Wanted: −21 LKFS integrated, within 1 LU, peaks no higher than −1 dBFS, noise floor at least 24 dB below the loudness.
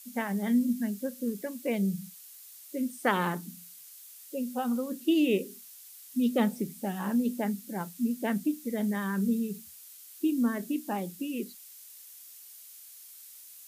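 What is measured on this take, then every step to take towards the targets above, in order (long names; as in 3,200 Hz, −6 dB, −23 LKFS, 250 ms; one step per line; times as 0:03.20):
background noise floor −50 dBFS; target noise floor −55 dBFS; integrated loudness −30.5 LKFS; sample peak −11.0 dBFS; target loudness −21.0 LKFS
→ noise reduction from a noise print 6 dB
level +9.5 dB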